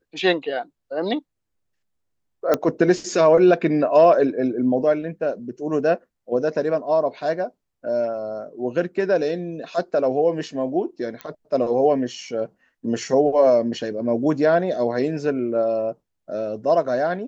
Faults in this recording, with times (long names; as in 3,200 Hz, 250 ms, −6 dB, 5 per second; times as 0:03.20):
0:02.54: click −6 dBFS
0:11.21: click −17 dBFS